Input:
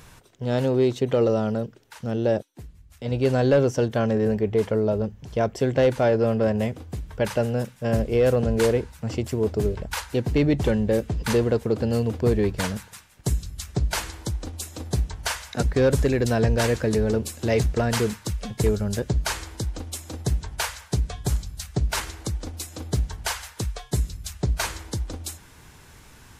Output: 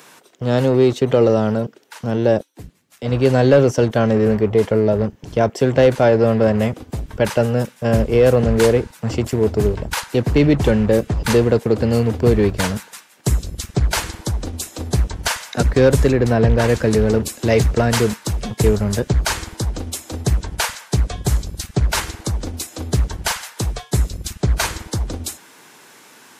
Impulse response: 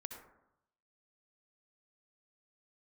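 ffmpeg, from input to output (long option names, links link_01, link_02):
-filter_complex "[0:a]asplit=3[link_01][link_02][link_03];[link_01]afade=type=out:start_time=16.11:duration=0.02[link_04];[link_02]highshelf=frequency=3000:gain=-11,afade=type=in:start_time=16.11:duration=0.02,afade=type=out:start_time=16.68:duration=0.02[link_05];[link_03]afade=type=in:start_time=16.68:duration=0.02[link_06];[link_04][link_05][link_06]amix=inputs=3:normalize=0,acrossover=split=210|1200|3600[link_07][link_08][link_09][link_10];[link_07]acrusher=bits=5:mix=0:aa=0.5[link_11];[link_11][link_08][link_09][link_10]amix=inputs=4:normalize=0,volume=6.5dB"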